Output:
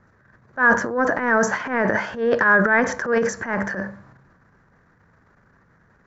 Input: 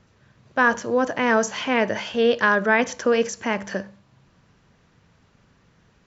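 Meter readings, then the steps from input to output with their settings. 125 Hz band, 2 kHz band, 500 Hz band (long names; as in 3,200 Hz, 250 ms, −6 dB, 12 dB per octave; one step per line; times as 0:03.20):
+5.5 dB, +4.0 dB, 0.0 dB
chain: transient designer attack −11 dB, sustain +10 dB
high shelf with overshoot 2,200 Hz −9 dB, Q 3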